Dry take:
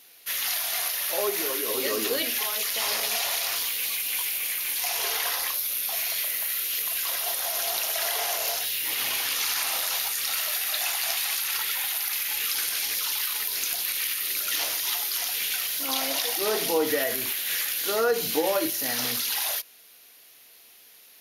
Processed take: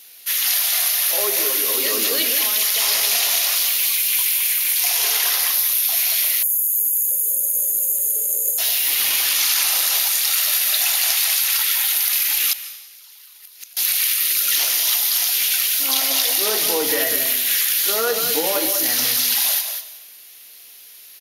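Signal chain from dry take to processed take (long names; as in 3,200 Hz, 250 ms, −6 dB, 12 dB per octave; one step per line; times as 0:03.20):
high-shelf EQ 2,100 Hz +9.5 dB
single-tap delay 195 ms −8 dB
0:12.52–0:13.77: gate with flip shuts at −8 dBFS, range −26 dB
dense smooth reverb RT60 0.94 s, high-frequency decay 0.95×, pre-delay 120 ms, DRR 13 dB
0:06.43–0:08.58: gain on a spectral selection 590–6,400 Hz −29 dB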